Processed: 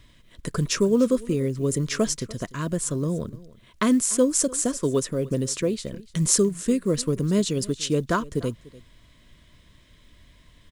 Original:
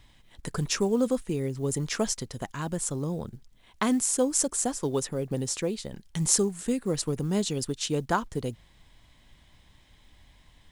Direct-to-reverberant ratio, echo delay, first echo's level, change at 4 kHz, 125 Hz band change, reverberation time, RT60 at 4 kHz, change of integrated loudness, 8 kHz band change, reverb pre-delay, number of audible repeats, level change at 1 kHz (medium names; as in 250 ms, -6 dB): no reverb, 294 ms, -20.5 dB, +2.5 dB, +5.0 dB, no reverb, no reverb, +4.0 dB, +2.5 dB, no reverb, 1, +0.5 dB